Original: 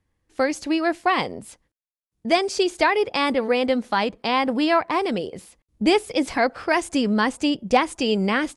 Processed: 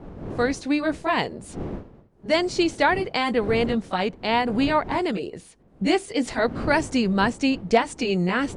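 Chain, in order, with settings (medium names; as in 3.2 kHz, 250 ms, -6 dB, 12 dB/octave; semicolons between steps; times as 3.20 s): rotating-head pitch shifter -1.5 st; wind noise 320 Hz -37 dBFS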